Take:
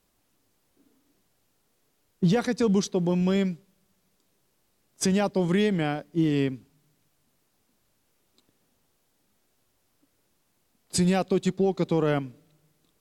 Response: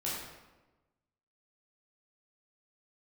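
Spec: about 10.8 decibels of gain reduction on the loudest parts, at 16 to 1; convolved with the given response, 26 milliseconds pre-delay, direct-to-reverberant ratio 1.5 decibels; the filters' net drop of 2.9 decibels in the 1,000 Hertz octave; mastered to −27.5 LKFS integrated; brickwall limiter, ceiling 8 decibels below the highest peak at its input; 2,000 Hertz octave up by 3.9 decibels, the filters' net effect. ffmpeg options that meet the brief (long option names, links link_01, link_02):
-filter_complex "[0:a]equalizer=frequency=1000:width_type=o:gain=-6,equalizer=frequency=2000:width_type=o:gain=6.5,acompressor=threshold=-29dB:ratio=16,alimiter=level_in=2dB:limit=-24dB:level=0:latency=1,volume=-2dB,asplit=2[link_01][link_02];[1:a]atrim=start_sample=2205,adelay=26[link_03];[link_02][link_03]afir=irnorm=-1:irlink=0,volume=-5.5dB[link_04];[link_01][link_04]amix=inputs=2:normalize=0,volume=6dB"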